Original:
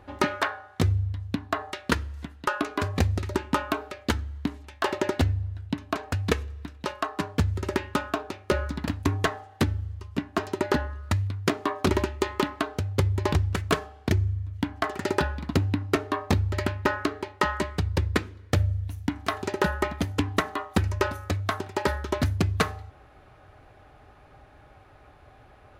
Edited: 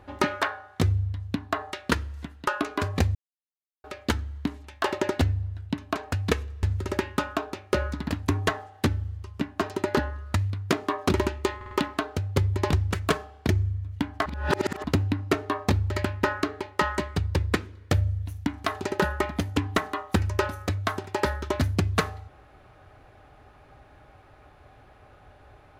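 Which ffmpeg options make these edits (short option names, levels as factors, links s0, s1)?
-filter_complex "[0:a]asplit=9[s0][s1][s2][s3][s4][s5][s6][s7][s8];[s0]atrim=end=3.15,asetpts=PTS-STARTPTS,afade=t=out:st=3.146:d=0.004:c=hsin[s9];[s1]atrim=start=3.15:end=3.84,asetpts=PTS-STARTPTS,volume=0[s10];[s2]atrim=start=3.84:end=6.632,asetpts=PTS-STARTPTS,afade=t=in:d=0.004:c=hsin[s11];[s3]atrim=start=7.398:end=12.382[s12];[s4]atrim=start=12.328:end=12.382[s13];[s5]atrim=start=12.328:end=12.382[s14];[s6]atrim=start=12.328:end=14.882[s15];[s7]atrim=start=14.878:end=15.462,asetpts=PTS-STARTPTS,areverse[s16];[s8]atrim=start=15.458[s17];[s9][s10][s11]concat=n=3:v=0:a=1[s18];[s18][s12]acrossfade=d=0.004:c1=hsin:c2=hsin[s19];[s19][s13]acrossfade=d=0.004:c1=hsin:c2=hsin[s20];[s20][s14]acrossfade=d=0.004:c1=hsin:c2=hsin[s21];[s21][s15]acrossfade=d=0.004:c1=hsin:c2=hsin[s22];[s22][s16]acrossfade=d=0.004:c1=hsin:c2=hsin[s23];[s23][s17]acrossfade=d=0.004:c1=hsin:c2=hsin"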